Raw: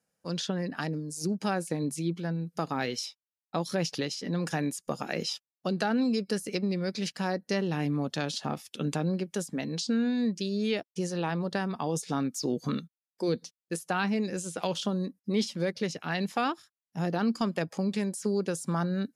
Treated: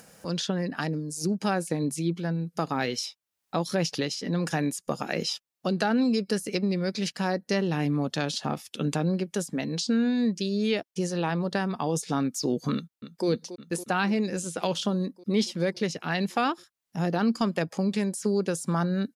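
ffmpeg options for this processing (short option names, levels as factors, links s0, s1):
-filter_complex "[0:a]asplit=2[s0][s1];[s1]afade=t=in:st=12.74:d=0.01,afade=t=out:st=13.27:d=0.01,aecho=0:1:280|560|840|1120|1400|1680|1960|2240|2520|2800|3080|3360:0.237137|0.18971|0.151768|0.121414|0.0971315|0.0777052|0.0621641|0.0497313|0.039785|0.031828|0.0254624|0.0203699[s2];[s0][s2]amix=inputs=2:normalize=0,acompressor=mode=upward:threshold=0.0141:ratio=2.5,volume=1.41"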